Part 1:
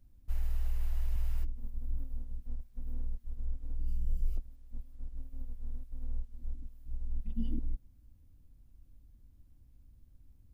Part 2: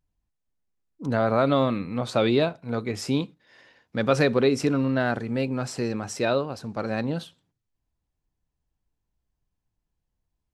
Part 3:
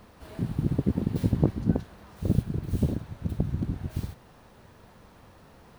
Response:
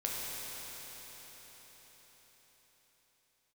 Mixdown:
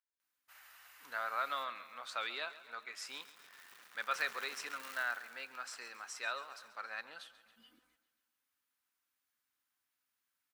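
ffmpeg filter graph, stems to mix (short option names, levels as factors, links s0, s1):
-filter_complex "[0:a]adelay=200,volume=0.841,asplit=3[s0][s1][s2];[s0]atrim=end=2.91,asetpts=PTS-STARTPTS,afade=t=out:st=2.906:d=0.004:c=hsin[s3];[s1]atrim=start=2.91:end=3.8,asetpts=PTS-STARTPTS,volume=0[s4];[s2]atrim=start=3.8,asetpts=PTS-STARTPTS,afade=t=in:d=0.004:c=hsin[s5];[s3][s4][s5]concat=n=3:v=0:a=1,asplit=2[s6][s7];[s7]volume=0.1[s8];[1:a]volume=0.282,asplit=2[s9][s10];[s10]volume=0.15[s11];[2:a]acompressor=threshold=0.0398:ratio=12,acrusher=bits=8:dc=4:mix=0:aa=0.000001,aeval=exprs='(tanh(35.5*val(0)+0.65)-tanh(0.65))/35.5':c=same,adelay=900,volume=0.841,afade=t=in:st=2.71:d=0.38:silence=0.281838,afade=t=in:st=3.92:d=0.27:silence=0.354813,asplit=2[s12][s13];[s13]volume=0.473[s14];[s8][s11][s14]amix=inputs=3:normalize=0,aecho=0:1:137|274|411|548|685|822|959|1096|1233:1|0.58|0.336|0.195|0.113|0.0656|0.0381|0.0221|0.0128[s15];[s6][s9][s12][s15]amix=inputs=4:normalize=0,highpass=f=1400:t=q:w=1.8"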